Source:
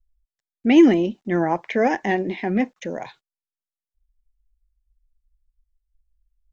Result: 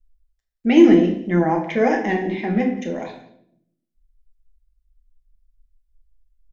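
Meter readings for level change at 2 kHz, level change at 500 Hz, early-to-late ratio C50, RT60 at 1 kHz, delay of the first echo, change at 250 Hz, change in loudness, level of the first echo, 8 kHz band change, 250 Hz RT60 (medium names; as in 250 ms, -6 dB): +0.5 dB, +2.5 dB, 7.0 dB, 0.60 s, 177 ms, +2.0 dB, +2.0 dB, -18.5 dB, no reading, 1.1 s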